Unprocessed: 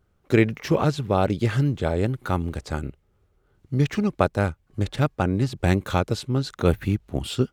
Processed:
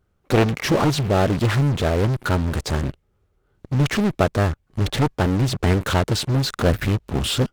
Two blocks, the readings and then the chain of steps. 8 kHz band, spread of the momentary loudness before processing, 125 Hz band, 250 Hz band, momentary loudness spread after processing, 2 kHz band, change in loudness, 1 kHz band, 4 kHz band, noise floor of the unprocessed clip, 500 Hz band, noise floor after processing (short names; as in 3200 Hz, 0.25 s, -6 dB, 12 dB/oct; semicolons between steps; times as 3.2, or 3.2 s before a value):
+9.5 dB, 8 LU, +4.0 dB, +2.0 dB, 5 LU, +4.5 dB, +3.0 dB, +3.0 dB, +8.5 dB, -66 dBFS, +2.0 dB, -67 dBFS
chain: in parallel at -10 dB: fuzz box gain 43 dB, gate -46 dBFS; on the sum: Doppler distortion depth 0.81 ms; gain -1 dB